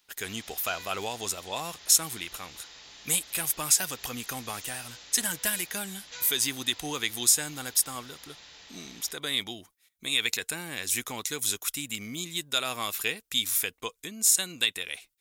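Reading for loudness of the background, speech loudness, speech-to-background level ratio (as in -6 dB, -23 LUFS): -46.0 LUFS, -28.0 LUFS, 18.0 dB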